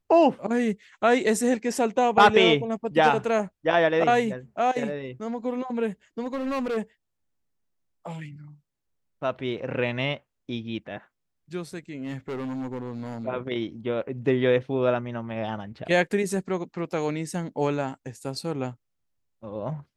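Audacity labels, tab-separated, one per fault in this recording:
6.220000	6.780000	clipped -25 dBFS
12.010000	13.270000	clipped -28.5 dBFS

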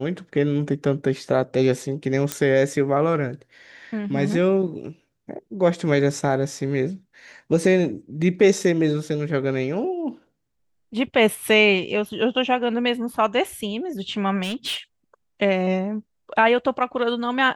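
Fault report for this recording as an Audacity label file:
2.320000	2.320000	pop -7 dBFS
14.420000	14.770000	clipped -23.5 dBFS

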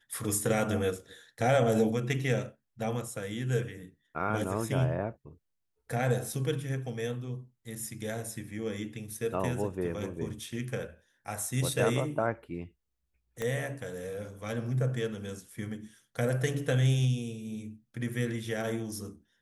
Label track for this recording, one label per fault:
13.420000	13.420000	pop -20 dBFS

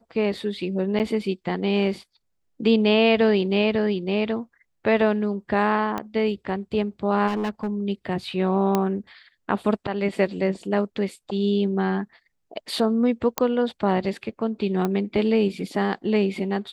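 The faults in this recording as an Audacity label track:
0.990000	1.000000	dropout 8.1 ms
5.980000	5.980000	pop -14 dBFS
7.270000	7.710000	clipped -22 dBFS
8.750000	8.750000	pop -8 dBFS
13.380000	13.380000	pop -5 dBFS
14.850000	14.850000	pop -13 dBFS

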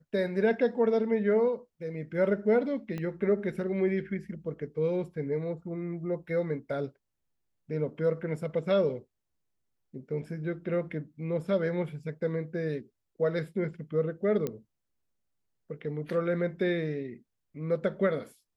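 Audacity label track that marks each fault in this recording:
2.980000	2.980000	pop -24 dBFS
14.470000	14.470000	pop -19 dBFS

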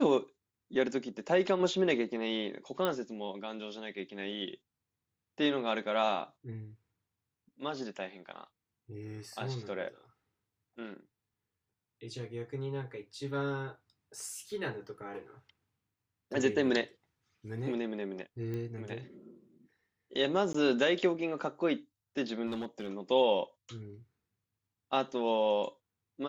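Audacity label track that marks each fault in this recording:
2.850000	2.850000	pop -17 dBFS
14.290000	14.290000	dropout 2.6 ms
18.540000	18.540000	pop -27 dBFS
20.530000	20.540000	dropout 14 ms
22.460000	22.910000	clipped -32 dBFS

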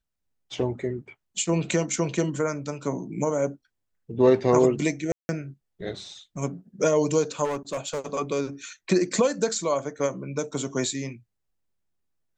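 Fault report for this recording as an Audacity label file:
5.120000	5.290000	dropout 170 ms
7.440000	8.140000	clipped -24.5 dBFS

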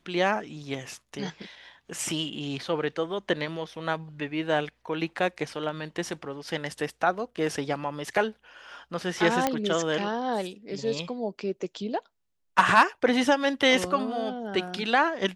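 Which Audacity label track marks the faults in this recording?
9.470000	9.470000	pop -9 dBFS

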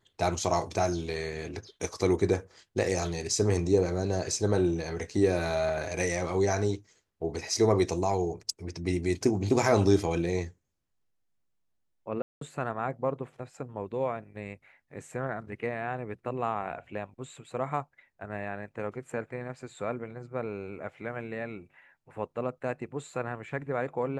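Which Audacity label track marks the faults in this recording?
12.220000	12.410000	dropout 193 ms

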